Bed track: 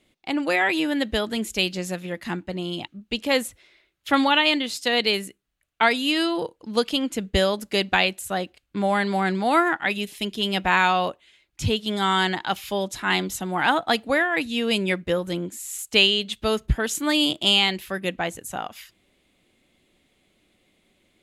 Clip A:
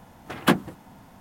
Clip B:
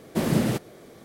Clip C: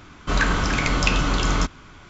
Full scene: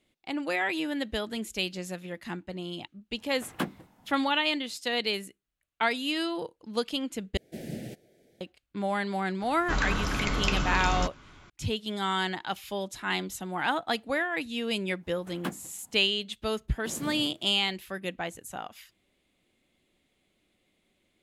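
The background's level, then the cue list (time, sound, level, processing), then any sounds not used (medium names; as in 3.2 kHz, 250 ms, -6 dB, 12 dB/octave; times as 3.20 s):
bed track -7.5 dB
3.12 s: add A -12 dB, fades 0.10 s
7.37 s: replace with B -14.5 dB + Chebyshev band-stop 680–1800 Hz
9.41 s: add C -7.5 dB
14.97 s: add A -15.5 dB, fades 0.10 s + short-mantissa float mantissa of 4-bit
16.70 s: add B -17 dB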